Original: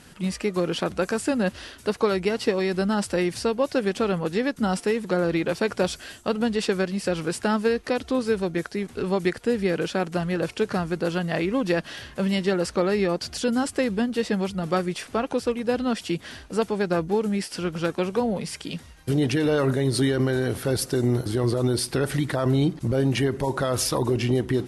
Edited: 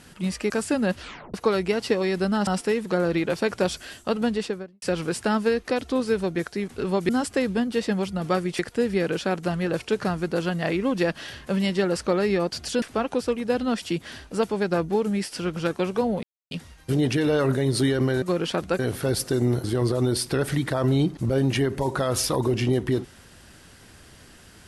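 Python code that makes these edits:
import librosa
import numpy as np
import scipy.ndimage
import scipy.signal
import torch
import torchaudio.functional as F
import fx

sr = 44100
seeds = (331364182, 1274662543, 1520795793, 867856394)

y = fx.studio_fade_out(x, sr, start_s=6.44, length_s=0.57)
y = fx.edit(y, sr, fx.move(start_s=0.5, length_s=0.57, to_s=20.41),
    fx.tape_stop(start_s=1.58, length_s=0.33),
    fx.cut(start_s=3.04, length_s=1.62),
    fx.move(start_s=13.51, length_s=1.5, to_s=9.28),
    fx.silence(start_s=18.42, length_s=0.28), tone=tone)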